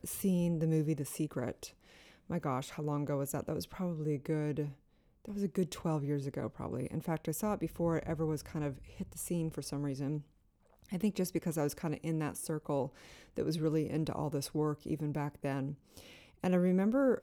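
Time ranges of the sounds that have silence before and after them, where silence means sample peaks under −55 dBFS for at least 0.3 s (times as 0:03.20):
0:05.25–0:10.27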